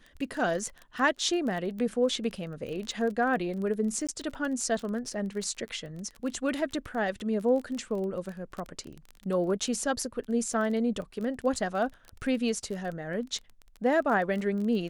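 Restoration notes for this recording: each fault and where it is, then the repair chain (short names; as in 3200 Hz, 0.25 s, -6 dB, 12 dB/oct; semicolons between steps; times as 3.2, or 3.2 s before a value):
crackle 21/s -34 dBFS
4.07–4.09 gap 16 ms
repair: de-click; interpolate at 4.07, 16 ms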